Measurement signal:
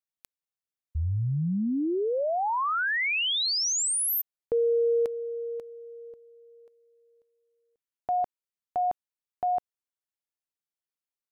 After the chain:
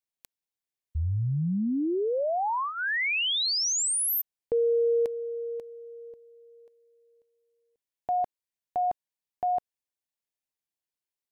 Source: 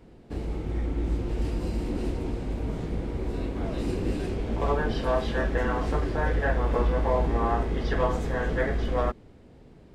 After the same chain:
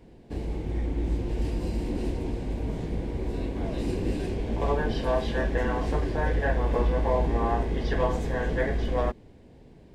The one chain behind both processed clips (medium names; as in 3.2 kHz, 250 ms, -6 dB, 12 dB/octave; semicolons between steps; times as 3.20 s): peaking EQ 1.3 kHz -11.5 dB 0.21 oct